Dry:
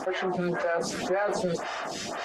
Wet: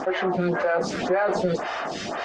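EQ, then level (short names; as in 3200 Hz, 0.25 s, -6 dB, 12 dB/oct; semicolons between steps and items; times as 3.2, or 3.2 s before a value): air absorption 110 m; +5.0 dB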